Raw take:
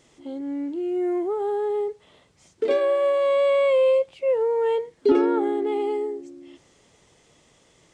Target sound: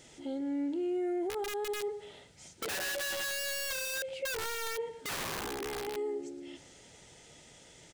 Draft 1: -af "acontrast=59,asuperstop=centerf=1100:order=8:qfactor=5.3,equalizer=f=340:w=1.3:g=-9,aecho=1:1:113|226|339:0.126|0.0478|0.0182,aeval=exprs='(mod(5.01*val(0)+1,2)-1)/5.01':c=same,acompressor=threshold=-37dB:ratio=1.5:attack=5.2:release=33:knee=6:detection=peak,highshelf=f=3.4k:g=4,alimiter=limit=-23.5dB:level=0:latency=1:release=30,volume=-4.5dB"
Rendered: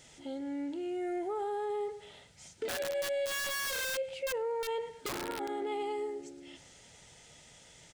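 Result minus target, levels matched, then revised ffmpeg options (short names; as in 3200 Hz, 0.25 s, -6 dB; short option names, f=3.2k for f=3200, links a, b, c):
250 Hz band -2.5 dB
-af "acontrast=59,asuperstop=centerf=1100:order=8:qfactor=5.3,equalizer=f=340:w=1.3:g=-2,aecho=1:1:113|226|339:0.126|0.0478|0.0182,aeval=exprs='(mod(5.01*val(0)+1,2)-1)/5.01':c=same,acompressor=threshold=-37dB:ratio=1.5:attack=5.2:release=33:knee=6:detection=peak,highshelf=f=3.4k:g=4,alimiter=limit=-23.5dB:level=0:latency=1:release=30,volume=-4.5dB"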